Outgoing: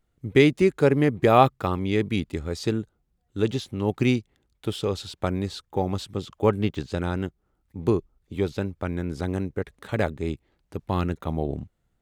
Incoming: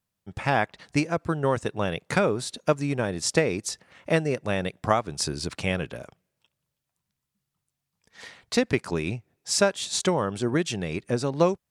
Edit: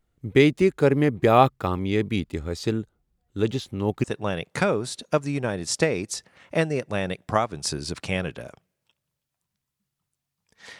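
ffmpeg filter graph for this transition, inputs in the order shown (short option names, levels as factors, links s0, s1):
-filter_complex "[0:a]apad=whole_dur=10.79,atrim=end=10.79,atrim=end=4.042[s0];[1:a]atrim=start=1.588:end=8.34[s1];[s0][s1]acrossfade=d=0.004:c1=hsin:c2=hsin"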